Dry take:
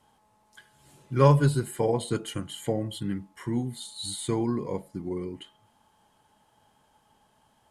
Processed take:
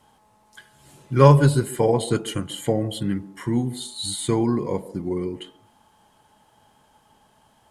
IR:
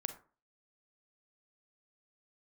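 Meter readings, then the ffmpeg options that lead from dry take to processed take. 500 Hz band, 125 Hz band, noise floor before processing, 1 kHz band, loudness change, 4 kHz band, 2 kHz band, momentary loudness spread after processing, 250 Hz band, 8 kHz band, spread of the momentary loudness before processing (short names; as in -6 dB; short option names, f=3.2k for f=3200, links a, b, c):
+6.0 dB, +6.0 dB, -66 dBFS, +6.0 dB, +6.0 dB, +6.0 dB, +6.0 dB, 14 LU, +6.0 dB, +6.0 dB, 14 LU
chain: -filter_complex "[0:a]asplit=2[a][b];[b]asuperpass=centerf=420:order=4:qfactor=0.63[c];[1:a]atrim=start_sample=2205,asetrate=37485,aresample=44100,adelay=142[d];[c][d]afir=irnorm=-1:irlink=0,volume=-14.5dB[e];[a][e]amix=inputs=2:normalize=0,volume=6dB"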